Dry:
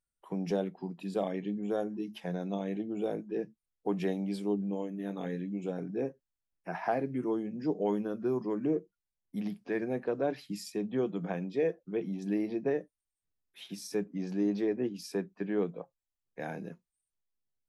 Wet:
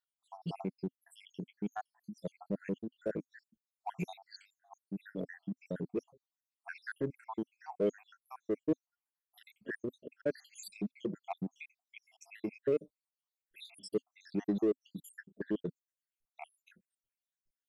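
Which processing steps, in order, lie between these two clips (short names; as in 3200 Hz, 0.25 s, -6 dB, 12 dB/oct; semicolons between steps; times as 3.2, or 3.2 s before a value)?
random spectral dropouts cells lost 82%; dynamic EQ 260 Hz, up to -5 dB, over -57 dBFS, Q 6.7; in parallel at -6.5 dB: hard clip -36.5 dBFS, distortion -5 dB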